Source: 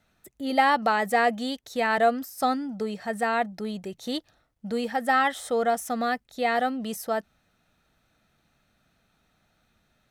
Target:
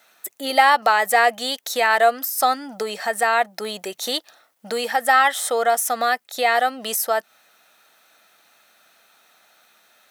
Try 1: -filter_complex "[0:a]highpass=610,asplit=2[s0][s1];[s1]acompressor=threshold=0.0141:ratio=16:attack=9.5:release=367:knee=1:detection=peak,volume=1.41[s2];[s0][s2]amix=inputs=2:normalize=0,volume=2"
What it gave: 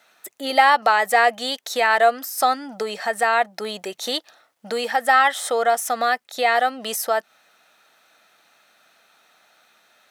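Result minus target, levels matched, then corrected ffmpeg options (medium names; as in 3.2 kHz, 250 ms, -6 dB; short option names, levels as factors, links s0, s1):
8 kHz band -3.0 dB
-filter_complex "[0:a]highpass=610,highshelf=f=9900:g=10.5,asplit=2[s0][s1];[s1]acompressor=threshold=0.0141:ratio=16:attack=9.5:release=367:knee=1:detection=peak,volume=1.41[s2];[s0][s2]amix=inputs=2:normalize=0,volume=2"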